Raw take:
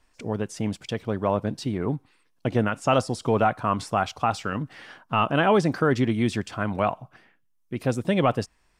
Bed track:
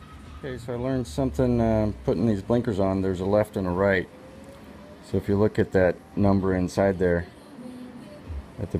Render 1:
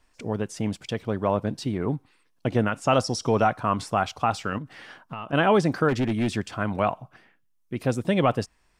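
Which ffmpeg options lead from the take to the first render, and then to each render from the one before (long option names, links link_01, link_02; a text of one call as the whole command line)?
ffmpeg -i in.wav -filter_complex "[0:a]asettb=1/sr,asplit=3[link_01][link_02][link_03];[link_01]atrim=end=3.044[link_04];[link_02]atrim=start=3.04:end=3.57,asetpts=PTS-STARTPTS,afade=type=in:duration=0.004:curve=qsin,afade=type=out:start_time=0.526:duration=0.004:curve=qsin,equalizer=frequency=5600:width_type=o:width=0.28:gain=14.5[link_05];[link_03]atrim=start=3.566[link_06];[link_04][link_05]acrossfade=duration=0.004:curve1=hsin:curve2=qsin[link_07];[link_07][link_06]acrossfade=duration=0.004:curve1=qsin:curve2=hsin,asettb=1/sr,asplit=3[link_08][link_09][link_10];[link_08]atrim=end=4.584[link_11];[link_09]atrim=start=4.58:end=5.33,asetpts=PTS-STARTPTS,afade=type=in:duration=0.004:curve=qsin,afade=type=out:start_time=0.746:duration=0.004:curve=qsin,acompressor=threshold=-32dB:ratio=6:attack=3.2:release=140:knee=1:detection=peak[link_12];[link_10]atrim=start=5.326[link_13];[link_11][link_12]acrossfade=duration=0.004:curve1=hsin:curve2=qsin[link_14];[link_14][link_13]acrossfade=duration=0.004:curve1=qsin:curve2=hsin,asplit=3[link_15][link_16][link_17];[link_15]afade=type=out:start_time=5.88:duration=0.02[link_18];[link_16]asoftclip=type=hard:threshold=-20dB,afade=type=in:start_time=5.88:duration=0.02,afade=type=out:start_time=6.35:duration=0.02[link_19];[link_17]afade=type=in:start_time=6.35:duration=0.02[link_20];[link_18][link_19][link_20]amix=inputs=3:normalize=0" out.wav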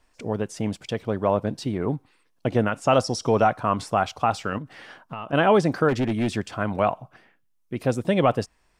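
ffmpeg -i in.wav -af "equalizer=frequency=580:width=1.1:gain=3" out.wav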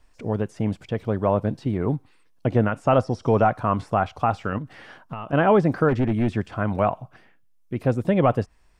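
ffmpeg -i in.wav -filter_complex "[0:a]lowshelf=frequency=110:gain=9.5,acrossover=split=2500[link_01][link_02];[link_02]acompressor=threshold=-52dB:ratio=4:attack=1:release=60[link_03];[link_01][link_03]amix=inputs=2:normalize=0" out.wav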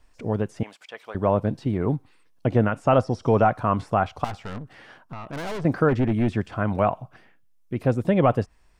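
ffmpeg -i in.wav -filter_complex "[0:a]asettb=1/sr,asplit=3[link_01][link_02][link_03];[link_01]atrim=end=0.634[link_04];[link_02]atrim=start=0.63:end=1.15,asetpts=PTS-STARTPTS,afade=type=in:duration=0.004:curve=qsin,afade=type=out:start_time=0.516:duration=0.004:curve=qsin,highpass=1000[link_05];[link_03]atrim=start=1.146[link_06];[link_04][link_05]acrossfade=duration=0.004:curve1=hsin:curve2=qsin[link_07];[link_07][link_06]acrossfade=duration=0.004:curve1=qsin:curve2=hsin,asettb=1/sr,asplit=3[link_08][link_09][link_10];[link_08]atrim=end=4.244[link_11];[link_09]atrim=start=4.24:end=5.65,asetpts=PTS-STARTPTS,afade=type=in:duration=0.004:curve=qsin,afade=type=out:start_time=1.406:duration=0.004:curve=qsin,aeval=exprs='(tanh(31.6*val(0)+0.55)-tanh(0.55))/31.6':channel_layout=same[link_12];[link_10]atrim=start=5.646[link_13];[link_11][link_12]acrossfade=duration=0.004:curve1=hsin:curve2=qsin[link_14];[link_14][link_13]acrossfade=duration=0.004:curve1=qsin:curve2=hsin" out.wav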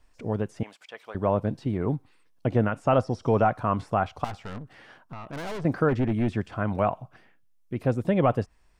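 ffmpeg -i in.wav -af "volume=-3dB" out.wav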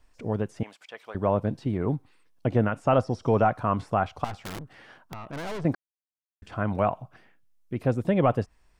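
ffmpeg -i in.wav -filter_complex "[0:a]asettb=1/sr,asplit=3[link_01][link_02][link_03];[link_01]atrim=end=4.374[link_04];[link_02]atrim=start=4.37:end=5.16,asetpts=PTS-STARTPTS,afade=type=in:duration=0.004:curve=qsin,afade=type=out:start_time=0.786:duration=0.004:curve=qsin,aeval=exprs='(mod(33.5*val(0)+1,2)-1)/33.5':channel_layout=same[link_05];[link_03]atrim=start=5.156[link_06];[link_04][link_05]acrossfade=duration=0.004:curve1=hsin:curve2=qsin[link_07];[link_07][link_06]acrossfade=duration=0.004:curve1=qsin:curve2=hsin,asplit=3[link_08][link_09][link_10];[link_08]atrim=end=5.75,asetpts=PTS-STARTPTS,afade=type=out:start_time=5.746:duration=0.004:curve=hsin[link_11];[link_09]atrim=start=5.75:end=6.42,asetpts=PTS-STARTPTS,volume=0[link_12];[link_10]atrim=start=6.42,asetpts=PTS-STARTPTS,afade=type=in:duration=0.004:curve=hsin[link_13];[link_11][link_12][link_13]concat=n=3:v=0:a=1" out.wav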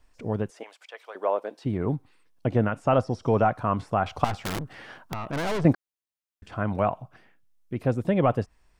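ffmpeg -i in.wav -filter_complex "[0:a]asettb=1/sr,asplit=3[link_01][link_02][link_03];[link_01]atrim=end=0.504[link_04];[link_02]atrim=start=0.5:end=1.65,asetpts=PTS-STARTPTS,afade=type=in:duration=0.004:curve=qsin,afade=type=out:start_time=1.146:duration=0.004:curve=qsin,highpass=frequency=400:width=0.5412,highpass=frequency=400:width=1.3066[link_05];[link_03]atrim=start=1.646[link_06];[link_04][link_05]acrossfade=duration=0.004:curve1=hsin:curve2=qsin[link_07];[link_07][link_06]acrossfade=duration=0.004:curve1=qsin:curve2=hsin,asettb=1/sr,asplit=3[link_08][link_09][link_10];[link_08]atrim=end=4.064[link_11];[link_09]atrim=start=4.06:end=5.73,asetpts=PTS-STARTPTS,afade=type=in:duration=0.004:curve=qsin,afade=type=out:start_time=1.666:duration=0.004:curve=qsin,acontrast=60[link_12];[link_10]atrim=start=5.726[link_13];[link_11][link_12]acrossfade=duration=0.004:curve1=hsin:curve2=qsin[link_14];[link_14][link_13]acrossfade=duration=0.004:curve1=qsin:curve2=hsin" out.wav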